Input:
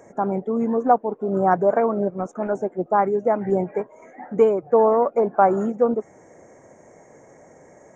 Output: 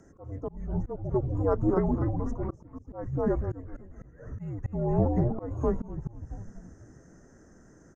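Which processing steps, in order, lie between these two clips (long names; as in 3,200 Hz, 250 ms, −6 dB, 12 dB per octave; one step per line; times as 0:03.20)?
frequency shifter −280 Hz
echo with shifted repeats 246 ms, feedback 40%, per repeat −75 Hz, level −3.5 dB
volume swells 306 ms
level −7.5 dB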